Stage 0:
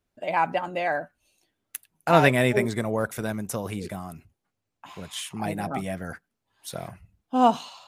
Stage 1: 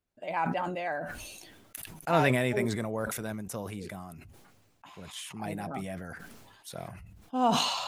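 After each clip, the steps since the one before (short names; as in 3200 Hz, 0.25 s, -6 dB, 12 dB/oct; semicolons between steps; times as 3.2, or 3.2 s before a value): sustainer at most 36 dB/s; gain -7.5 dB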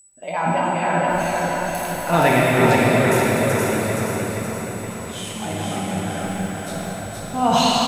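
whine 7900 Hz -52 dBFS; feedback echo 0.472 s, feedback 51%, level -3 dB; plate-style reverb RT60 4.5 s, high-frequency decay 0.85×, DRR -5 dB; gain +4.5 dB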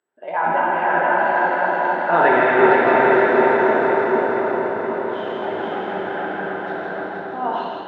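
ending faded out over 0.84 s; speaker cabinet 340–2800 Hz, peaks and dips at 390 Hz +9 dB, 900 Hz +5 dB, 1600 Hz +8 dB, 2400 Hz -9 dB; split-band echo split 1200 Hz, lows 0.75 s, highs 0.164 s, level -3.5 dB; gain -1 dB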